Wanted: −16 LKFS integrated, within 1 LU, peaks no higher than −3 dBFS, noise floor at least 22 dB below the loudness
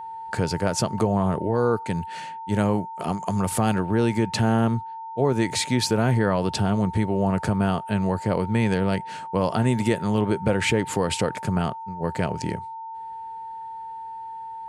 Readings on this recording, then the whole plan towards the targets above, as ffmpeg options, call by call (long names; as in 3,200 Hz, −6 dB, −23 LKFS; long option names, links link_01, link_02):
interfering tone 900 Hz; level of the tone −33 dBFS; integrated loudness −24.0 LKFS; sample peak −7.0 dBFS; target loudness −16.0 LKFS
→ -af "bandreject=frequency=900:width=30"
-af "volume=8dB,alimiter=limit=-3dB:level=0:latency=1"